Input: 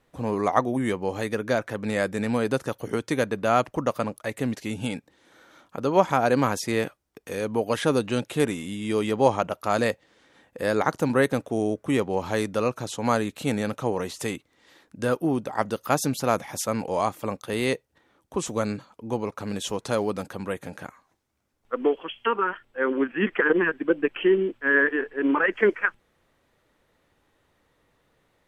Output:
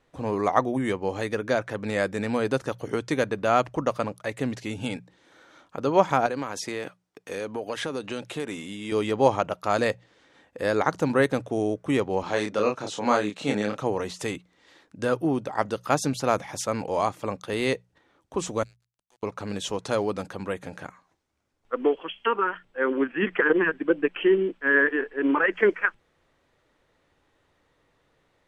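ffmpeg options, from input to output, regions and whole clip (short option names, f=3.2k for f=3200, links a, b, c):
-filter_complex "[0:a]asettb=1/sr,asplit=3[a][b][c];[a]atrim=end=6.264[d];[b]atrim=start=6.26:end=8.92,asetpts=PTS-STARTPTS,afade=t=in:d=0.004:c=qsin,afade=t=out:st=2.656:d=0.004:c=qsin,highpass=f=220:p=1,acompressor=threshold=-26dB:ratio=5:attack=3.2:release=140:knee=1:detection=peak[e];[c]atrim=start=8.916[f];[d][e]acrossfade=d=0.004:c1=hsin:c2=qsin[g];[g][f]acrossfade=d=0.004:c1=qsin:c2=hsin,asettb=1/sr,asplit=3[h][i][j];[h]atrim=end=12.234[k];[i]atrim=start=12.23:end=13.78,asetpts=PTS-STARTPTS,afade=t=in:d=0.004:c=qsin,afade=t=out:st=1.546:d=0.004:c=qsin,highpass=180,lowpass=7.8k,asplit=2[l][m];[m]adelay=29,volume=-3.5dB[n];[l][n]amix=inputs=2:normalize=0,atrim=end_sample=68355[o];[j]atrim=start=13.776[p];[k][o]acrossfade=d=0.004:c1=hsin:c2=qsin[q];[q][p]acrossfade=d=0.004:c1=qsin:c2=hsin,asettb=1/sr,asplit=3[r][s][t];[r]atrim=end=18.634[u];[s]atrim=start=18.63:end=19.23,asetpts=PTS-STARTPTS,afade=t=in:d=0.004:c=qsin,afade=t=out:st=0.596:d=0.004:c=qsin,acompressor=threshold=-45dB:ratio=2:attack=3.2:release=140:knee=1:detection=peak,aderivative,aeval=exprs='val(0)*gte(abs(val(0)),0.00141)':c=same[v];[t]atrim=start=19.226[w];[u][v]acrossfade=d=0.004:c1=hsin:c2=qsin[x];[x][w]acrossfade=d=0.004:c1=qsin:c2=hsin,lowpass=8.2k,equalizer=f=220:w=6.3:g=-4,bandreject=f=60:t=h:w=6,bandreject=f=120:t=h:w=6,bandreject=f=180:t=h:w=6"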